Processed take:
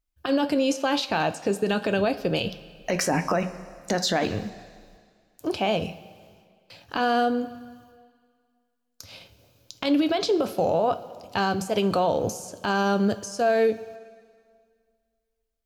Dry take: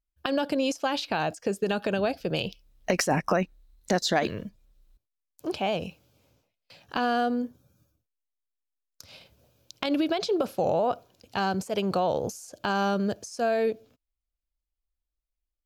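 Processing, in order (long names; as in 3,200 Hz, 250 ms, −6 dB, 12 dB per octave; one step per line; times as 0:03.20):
convolution reverb RT60 2.0 s, pre-delay 3 ms, DRR 9.5 dB
brickwall limiter −18 dBFS, peak gain reduction 8 dB
level +4 dB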